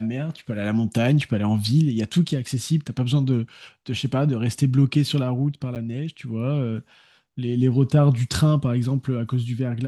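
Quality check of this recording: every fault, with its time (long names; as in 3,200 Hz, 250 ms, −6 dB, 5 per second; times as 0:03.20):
0:05.75–0:05.76: drop-out 8.8 ms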